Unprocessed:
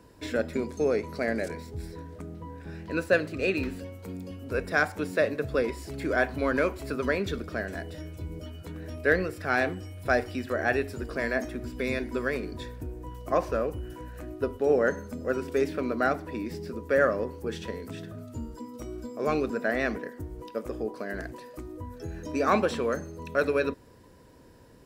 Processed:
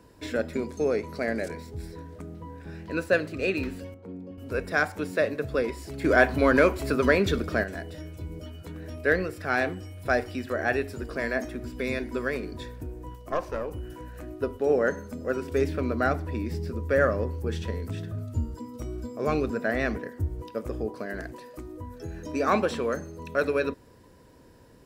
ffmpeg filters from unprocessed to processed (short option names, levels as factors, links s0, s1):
-filter_complex "[0:a]asettb=1/sr,asplit=3[s0][s1][s2];[s0]atrim=end=3.944[s3];[s1]atrim=start=3.94:end=4.38,asetpts=PTS-STARTPTS,afade=t=in:d=0.004:c=qsin,afade=t=out:st=0.436:d=0.004:c=qsin,bandpass=f=350:t=q:w=0.56[s4];[s2]atrim=start=4.376[s5];[s3][s4]acrossfade=d=0.004:c1=hsin:c2=qsin[s6];[s6][s5]acrossfade=d=0.004:c1=qsin:c2=hsin,asettb=1/sr,asplit=3[s7][s8][s9];[s7]atrim=end=6.044[s10];[s8]atrim=start=6.04:end=7.64,asetpts=PTS-STARTPTS,afade=t=in:d=0.004:c=qsin,afade=t=out:st=1.596:d=0.004:c=qsin,acontrast=60[s11];[s9]atrim=start=7.636[s12];[s10][s11]acrossfade=d=0.004:c1=hsin:c2=qsin[s13];[s13][s12]acrossfade=d=0.004:c1=qsin:c2=hsin,asettb=1/sr,asplit=3[s14][s15][s16];[s14]atrim=end=13.154[s17];[s15]atrim=start=13.15:end=13.71,asetpts=PTS-STARTPTS,afade=t=in:d=0.004:c=qsin,afade=t=out:st=0.556:d=0.004:c=qsin,aeval=exprs='(tanh(7.94*val(0)+0.7)-tanh(0.7))/7.94':c=same[s18];[s16]atrim=start=13.706[s19];[s17][s18]acrossfade=d=0.004:c1=hsin:c2=qsin[s20];[s20][s19]acrossfade=d=0.004:c1=qsin:c2=hsin,asettb=1/sr,asplit=3[s21][s22][s23];[s21]atrim=end=15.514[s24];[s22]atrim=start=15.51:end=21.06,asetpts=PTS-STARTPTS,afade=t=in:d=0.004:c=qsin,afade=t=out:st=5.546:d=0.004:c=qsin,equalizer=f=87:t=o:w=1.1:g=13[s25];[s23]atrim=start=21.056[s26];[s24][s25]acrossfade=d=0.004:c1=hsin:c2=qsin[s27];[s27][s26]acrossfade=d=0.004:c1=qsin:c2=hsin"